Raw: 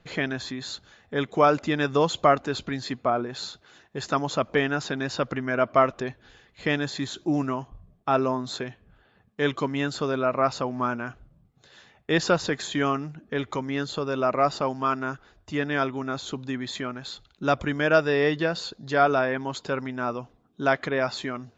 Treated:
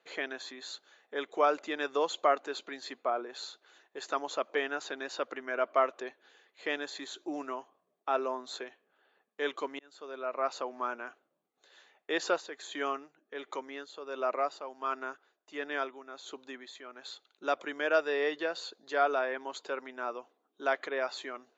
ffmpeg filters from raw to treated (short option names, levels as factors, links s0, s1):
-filter_complex "[0:a]asplit=3[s0][s1][s2];[s0]afade=t=out:st=12.39:d=0.02[s3];[s1]tremolo=f=1.4:d=0.61,afade=t=in:st=12.39:d=0.02,afade=t=out:st=16.97:d=0.02[s4];[s2]afade=t=in:st=16.97:d=0.02[s5];[s3][s4][s5]amix=inputs=3:normalize=0,asplit=2[s6][s7];[s6]atrim=end=9.79,asetpts=PTS-STARTPTS,afade=t=out:st=9.786:d=0.004:c=hsin[s8];[s7]atrim=start=9.79,asetpts=PTS-STARTPTS,afade=t=in:d=0.77[s9];[s8][s9]concat=n=2:v=0:a=1,highpass=f=350:w=0.5412,highpass=f=350:w=1.3066,bandreject=f=5200:w=9.4,volume=0.447"